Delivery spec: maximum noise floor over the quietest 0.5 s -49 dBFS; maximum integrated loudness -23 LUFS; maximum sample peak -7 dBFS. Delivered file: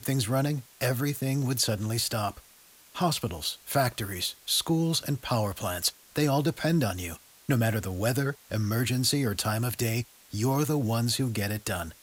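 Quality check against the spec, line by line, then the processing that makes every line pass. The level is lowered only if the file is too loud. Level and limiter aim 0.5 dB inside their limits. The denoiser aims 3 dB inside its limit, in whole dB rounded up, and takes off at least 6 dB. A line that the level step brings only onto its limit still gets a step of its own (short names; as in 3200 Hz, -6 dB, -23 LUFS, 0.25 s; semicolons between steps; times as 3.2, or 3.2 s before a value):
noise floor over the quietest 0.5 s -56 dBFS: OK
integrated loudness -28.0 LUFS: OK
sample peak -12.5 dBFS: OK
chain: none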